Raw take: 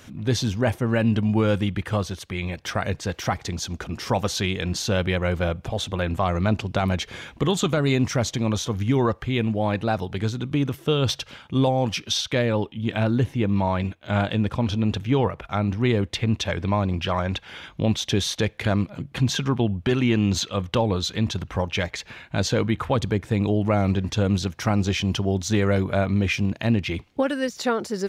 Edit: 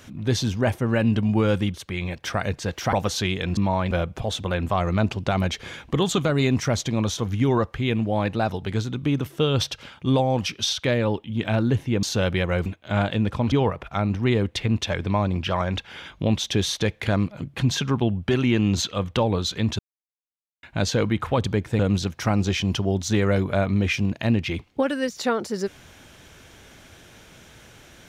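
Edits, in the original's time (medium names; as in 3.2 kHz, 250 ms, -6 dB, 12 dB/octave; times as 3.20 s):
1.74–2.15 s: delete
3.34–4.12 s: delete
4.76–5.39 s: swap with 13.51–13.85 s
14.71–15.10 s: delete
21.37–22.21 s: mute
23.37–24.19 s: delete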